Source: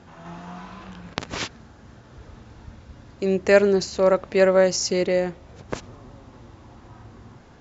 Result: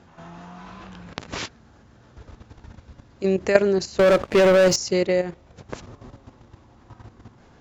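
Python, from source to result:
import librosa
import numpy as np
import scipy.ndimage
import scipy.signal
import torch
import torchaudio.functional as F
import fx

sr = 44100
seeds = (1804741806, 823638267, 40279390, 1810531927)

y = fx.level_steps(x, sr, step_db=11)
y = fx.leveller(y, sr, passes=3, at=(3.99, 4.76))
y = F.gain(torch.from_numpy(y), 3.0).numpy()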